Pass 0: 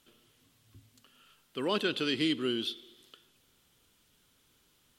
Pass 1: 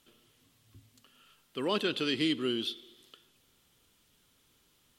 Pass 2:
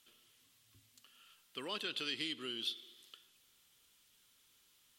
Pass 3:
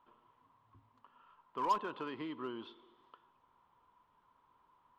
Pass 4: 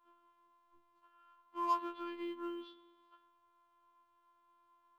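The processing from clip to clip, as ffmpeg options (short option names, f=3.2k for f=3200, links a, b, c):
-af "bandreject=f=1.5k:w=27"
-af "acompressor=threshold=-33dB:ratio=2.5,tiltshelf=f=970:g=-6.5,volume=-6dB"
-filter_complex "[0:a]lowpass=f=990:t=q:w=12,asplit=2[a][b];[b]aeval=exprs='0.0178*(abs(mod(val(0)/0.0178+3,4)-2)-1)':c=same,volume=-7dB[c];[a][c]amix=inputs=2:normalize=0"
-af "afftfilt=real='hypot(re,im)*cos(PI*b)':imag='0':win_size=512:overlap=0.75,acrusher=bits=8:mode=log:mix=0:aa=0.000001,afftfilt=real='re*2*eq(mod(b,4),0)':imag='im*2*eq(mod(b,4),0)':win_size=2048:overlap=0.75,volume=-2.5dB"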